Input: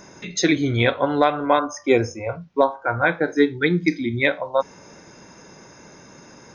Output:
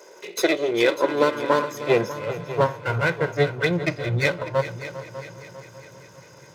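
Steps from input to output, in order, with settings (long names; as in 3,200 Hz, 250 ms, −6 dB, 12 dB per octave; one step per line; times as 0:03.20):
lower of the sound and its delayed copy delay 2 ms
echo machine with several playback heads 199 ms, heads second and third, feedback 49%, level −14 dB
high-pass filter sweep 420 Hz → 120 Hz, 0:00.32–0:02.89
level −3 dB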